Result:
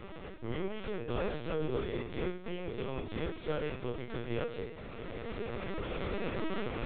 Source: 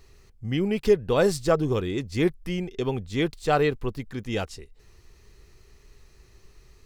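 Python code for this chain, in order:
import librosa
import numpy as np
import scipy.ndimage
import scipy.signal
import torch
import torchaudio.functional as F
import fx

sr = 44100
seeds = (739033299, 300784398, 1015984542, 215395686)

y = fx.bin_compress(x, sr, power=0.4)
y = fx.recorder_agc(y, sr, target_db=-10.0, rise_db_per_s=7.0, max_gain_db=30)
y = fx.leveller(y, sr, passes=1)
y = fx.resonator_bank(y, sr, root=39, chord='fifth', decay_s=0.39)
y = fx.lpc_vocoder(y, sr, seeds[0], excitation='pitch_kept', order=10)
y = F.gain(torch.from_numpy(y), -7.0).numpy()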